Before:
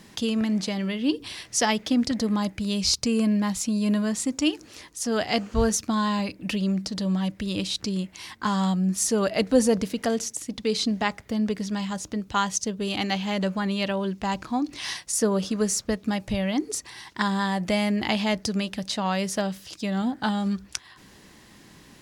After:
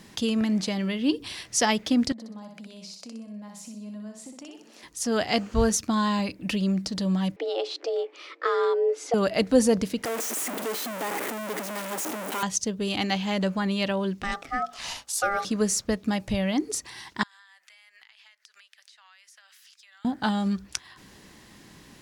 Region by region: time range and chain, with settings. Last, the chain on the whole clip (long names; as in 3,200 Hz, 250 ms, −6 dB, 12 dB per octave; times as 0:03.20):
0:02.12–0:04.83: Chebyshev high-pass with heavy ripple 160 Hz, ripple 9 dB + downward compressor 8 to 1, threshold −40 dBFS + repeating echo 62 ms, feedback 39%, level −4.5 dB
0:07.36–0:09.14: frequency shifter +240 Hz + low-pass filter 3,100 Hz
0:10.05–0:12.43: sign of each sample alone + high-pass filter 280 Hz 24 dB per octave + parametric band 4,500 Hz −9.5 dB 1.2 octaves
0:14.23–0:15.45: high-pass filter 160 Hz 24 dB per octave + ring modulation 1,000 Hz + mains-hum notches 60/120/180/240/300/360/420/480/540/600 Hz
0:17.23–0:20.05: four-pole ladder high-pass 1,300 Hz, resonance 35% + downward compressor 20 to 1, threshold −50 dBFS
whole clip: no processing